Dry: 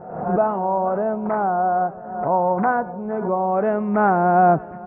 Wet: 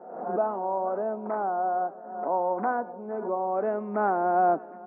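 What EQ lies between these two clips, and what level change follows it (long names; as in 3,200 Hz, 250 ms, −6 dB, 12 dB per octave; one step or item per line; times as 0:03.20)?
Butterworth high-pass 230 Hz 36 dB per octave
high-frequency loss of the air 59 metres
high-shelf EQ 2,200 Hz −10 dB
−6.0 dB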